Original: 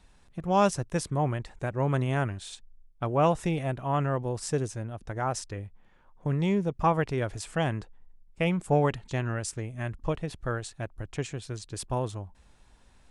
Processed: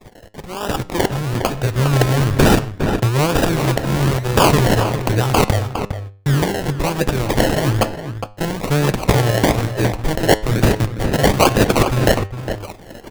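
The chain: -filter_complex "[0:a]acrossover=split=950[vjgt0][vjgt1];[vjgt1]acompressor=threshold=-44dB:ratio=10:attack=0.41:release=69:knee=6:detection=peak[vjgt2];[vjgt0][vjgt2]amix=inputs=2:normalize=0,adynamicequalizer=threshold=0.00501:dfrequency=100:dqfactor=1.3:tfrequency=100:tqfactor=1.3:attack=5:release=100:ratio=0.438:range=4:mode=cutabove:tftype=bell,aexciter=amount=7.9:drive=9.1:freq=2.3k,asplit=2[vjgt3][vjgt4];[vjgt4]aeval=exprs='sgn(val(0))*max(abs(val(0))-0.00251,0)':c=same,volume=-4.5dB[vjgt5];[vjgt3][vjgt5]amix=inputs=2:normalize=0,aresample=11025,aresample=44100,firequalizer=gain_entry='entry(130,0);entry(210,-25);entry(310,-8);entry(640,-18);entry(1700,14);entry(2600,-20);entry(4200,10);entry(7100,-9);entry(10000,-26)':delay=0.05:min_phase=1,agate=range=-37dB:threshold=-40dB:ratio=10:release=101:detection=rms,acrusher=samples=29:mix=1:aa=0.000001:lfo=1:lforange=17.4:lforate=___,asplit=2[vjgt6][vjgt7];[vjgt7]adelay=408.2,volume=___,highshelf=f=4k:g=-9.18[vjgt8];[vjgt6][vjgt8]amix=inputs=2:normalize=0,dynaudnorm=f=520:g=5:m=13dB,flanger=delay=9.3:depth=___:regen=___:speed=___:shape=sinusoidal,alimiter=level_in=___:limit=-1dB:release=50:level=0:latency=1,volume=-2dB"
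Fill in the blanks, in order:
1.1, -10dB, 1.1, 87, 0.38, 12dB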